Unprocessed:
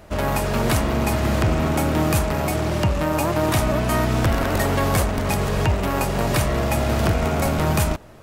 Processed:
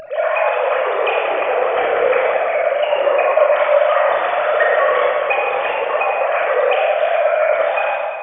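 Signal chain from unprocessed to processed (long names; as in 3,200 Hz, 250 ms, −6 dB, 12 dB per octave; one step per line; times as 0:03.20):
three sine waves on the formant tracks
rectangular room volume 3,700 cubic metres, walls mixed, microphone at 6.1 metres
upward compression, threshold −24 dBFS
level −5 dB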